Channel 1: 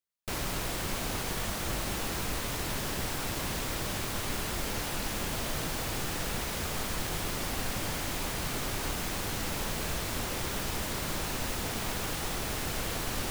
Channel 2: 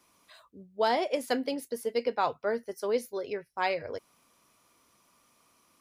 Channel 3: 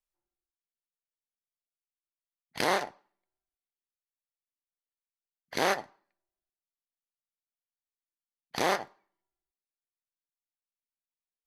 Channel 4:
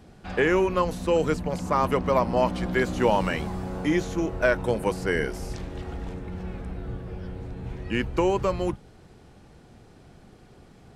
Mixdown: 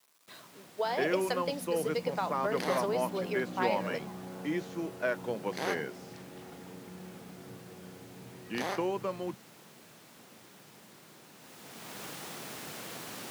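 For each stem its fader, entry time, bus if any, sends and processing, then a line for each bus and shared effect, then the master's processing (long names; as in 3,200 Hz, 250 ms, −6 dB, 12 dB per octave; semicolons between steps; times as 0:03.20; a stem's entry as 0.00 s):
0:11.33 −21 dB → 0:12.02 −8 dB, 0.00 s, no send, no processing
+2.0 dB, 0.00 s, no send, high-pass filter 420 Hz 12 dB per octave; downward compressor, threshold −31 dBFS, peak gain reduction 9 dB; bit reduction 10 bits
−8.5 dB, 0.00 s, no send, no processing
−9.5 dB, 0.60 s, no send, low-pass filter 5,300 Hz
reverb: not used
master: high-pass filter 140 Hz 24 dB per octave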